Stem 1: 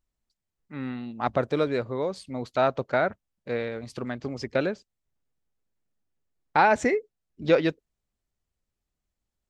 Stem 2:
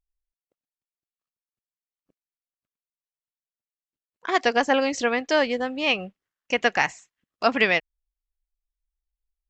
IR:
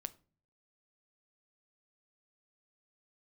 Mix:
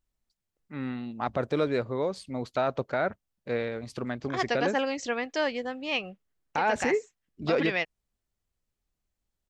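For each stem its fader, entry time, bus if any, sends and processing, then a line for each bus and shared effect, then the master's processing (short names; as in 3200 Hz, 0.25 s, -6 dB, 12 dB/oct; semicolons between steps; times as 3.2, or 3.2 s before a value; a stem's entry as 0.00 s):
-0.5 dB, 0.00 s, no send, dry
-7.0 dB, 0.05 s, no send, dry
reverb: off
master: limiter -16 dBFS, peak gain reduction 10 dB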